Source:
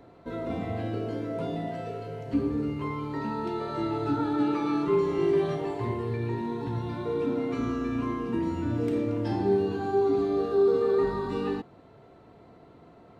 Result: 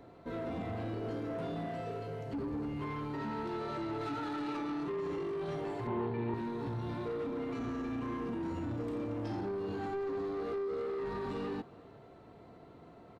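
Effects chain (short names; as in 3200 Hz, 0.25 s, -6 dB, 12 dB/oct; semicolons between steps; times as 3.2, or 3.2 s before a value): 4.01–4.57 tilt shelf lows -5 dB, about 700 Hz; limiter -24 dBFS, peak gain reduction 10 dB; soft clip -31 dBFS, distortion -13 dB; 5.87–6.34 speaker cabinet 100–3800 Hz, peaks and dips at 220 Hz +7 dB, 380 Hz +5 dB, 890 Hz +10 dB; speakerphone echo 0.37 s, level -21 dB; gain -2 dB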